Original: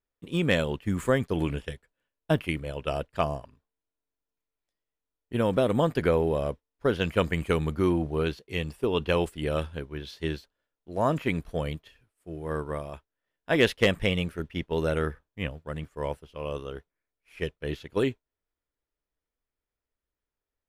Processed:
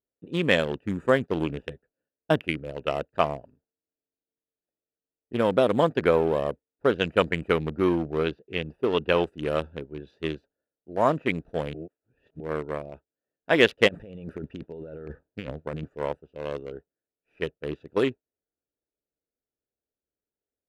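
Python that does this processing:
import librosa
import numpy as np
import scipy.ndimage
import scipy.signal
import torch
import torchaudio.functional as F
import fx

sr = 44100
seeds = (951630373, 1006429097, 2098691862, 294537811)

y = fx.peak_eq(x, sr, hz=7600.0, db=-11.0, octaves=0.77, at=(7.48, 9.24))
y = fx.over_compress(y, sr, threshold_db=-36.0, ratio=-1.0, at=(13.87, 15.95), fade=0.02)
y = fx.edit(y, sr, fx.reverse_span(start_s=11.74, length_s=0.66), tone=tone)
y = fx.wiener(y, sr, points=41)
y = fx.highpass(y, sr, hz=340.0, slope=6)
y = fx.high_shelf(y, sr, hz=7700.0, db=-9.0)
y = F.gain(torch.from_numpy(y), 5.5).numpy()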